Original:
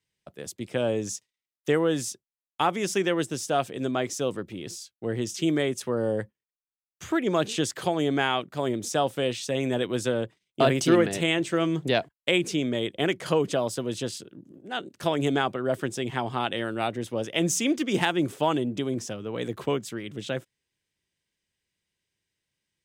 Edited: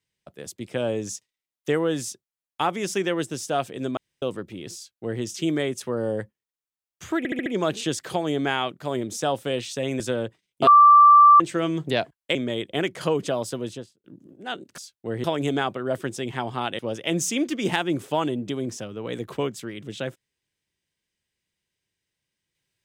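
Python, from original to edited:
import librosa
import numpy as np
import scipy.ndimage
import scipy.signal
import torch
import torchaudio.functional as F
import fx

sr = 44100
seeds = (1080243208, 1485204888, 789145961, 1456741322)

y = fx.studio_fade_out(x, sr, start_s=13.82, length_s=0.47)
y = fx.edit(y, sr, fx.room_tone_fill(start_s=3.97, length_s=0.25),
    fx.duplicate(start_s=4.76, length_s=0.46, to_s=15.03),
    fx.stutter(start_s=7.18, slice_s=0.07, count=5),
    fx.cut(start_s=9.72, length_s=0.26),
    fx.bleep(start_s=10.65, length_s=0.73, hz=1170.0, db=-8.5),
    fx.cut(start_s=12.33, length_s=0.27),
    fx.cut(start_s=16.58, length_s=0.5), tone=tone)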